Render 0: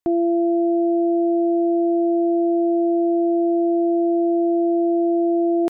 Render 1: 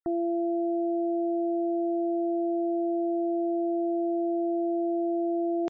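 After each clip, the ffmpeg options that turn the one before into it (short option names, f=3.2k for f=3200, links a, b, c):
-af "afftfilt=real='re*gte(hypot(re,im),0.00562)':imag='im*gte(hypot(re,im),0.00562)':win_size=1024:overlap=0.75,equalizer=f=280:t=o:w=1.8:g=-3.5,alimiter=limit=-22dB:level=0:latency=1,volume=-1dB"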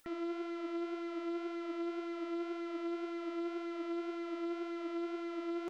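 -af "asoftclip=type=tanh:threshold=-37.5dB,acompressor=mode=upward:threshold=-48dB:ratio=2.5,flanger=delay=3.4:depth=5.7:regen=46:speed=1.9:shape=sinusoidal,volume=3.5dB"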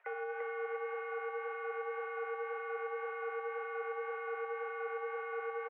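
-af "acompressor=threshold=-39dB:ratio=6,highpass=f=410:t=q:w=0.5412,highpass=f=410:t=q:w=1.307,lowpass=f=2.1k:t=q:w=0.5176,lowpass=f=2.1k:t=q:w=0.7071,lowpass=f=2.1k:t=q:w=1.932,afreqshift=120,aecho=1:1:343|686|1029|1372|1715|2058|2401:0.708|0.361|0.184|0.0939|0.0479|0.0244|0.0125,volume=7.5dB"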